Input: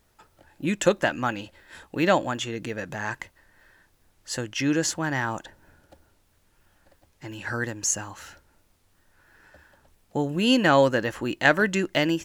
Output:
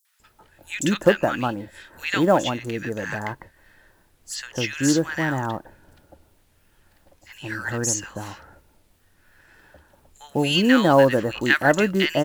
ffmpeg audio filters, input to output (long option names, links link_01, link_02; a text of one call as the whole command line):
ffmpeg -i in.wav -filter_complex "[0:a]acrossover=split=1300|6000[link_01][link_02][link_03];[link_02]adelay=50[link_04];[link_01]adelay=200[link_05];[link_05][link_04][link_03]amix=inputs=3:normalize=0,acrusher=bits=8:mode=log:mix=0:aa=0.000001,volume=4dB" out.wav